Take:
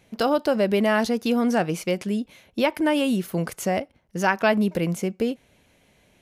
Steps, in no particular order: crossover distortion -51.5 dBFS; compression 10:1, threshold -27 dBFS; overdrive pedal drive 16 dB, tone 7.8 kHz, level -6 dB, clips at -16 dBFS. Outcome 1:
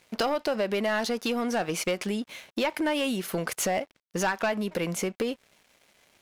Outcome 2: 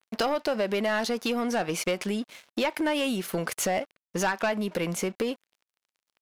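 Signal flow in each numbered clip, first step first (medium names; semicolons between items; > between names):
compression > overdrive pedal > crossover distortion; crossover distortion > compression > overdrive pedal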